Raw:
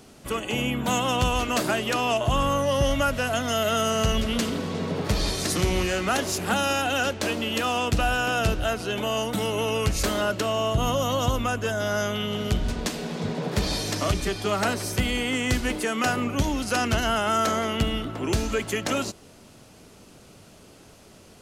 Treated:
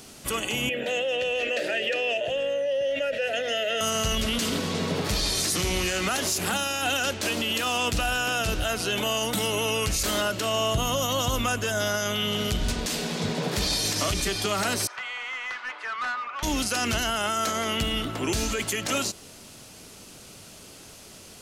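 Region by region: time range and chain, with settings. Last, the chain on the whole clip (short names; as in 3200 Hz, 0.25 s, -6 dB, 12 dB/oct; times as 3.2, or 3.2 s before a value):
0.69–3.81 vowel filter e + notches 50/100/150/200/250/300/350/400/450 Hz + fast leveller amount 70%
14.87–16.43 ladder band-pass 1400 Hz, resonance 40% + overdrive pedal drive 18 dB, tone 1400 Hz, clips at -23 dBFS
whole clip: high shelf 2100 Hz +10 dB; limiter -16.5 dBFS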